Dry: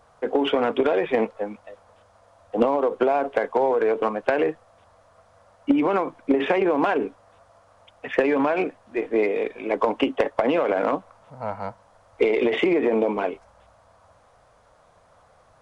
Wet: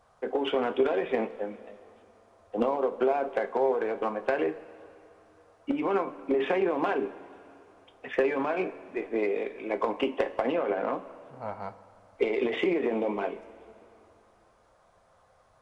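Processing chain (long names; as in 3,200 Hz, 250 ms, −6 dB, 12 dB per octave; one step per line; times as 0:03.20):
0:10.51–0:10.92: low-pass filter 2,000 Hz → 2,800 Hz 6 dB per octave
coupled-rooms reverb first 0.22 s, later 2.8 s, from −18 dB, DRR 6.5 dB
level −7 dB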